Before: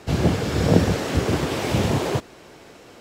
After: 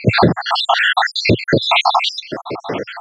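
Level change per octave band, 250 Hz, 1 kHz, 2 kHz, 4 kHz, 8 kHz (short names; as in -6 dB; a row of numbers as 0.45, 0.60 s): +2.5, +14.0, +15.0, +15.0, -2.0 dB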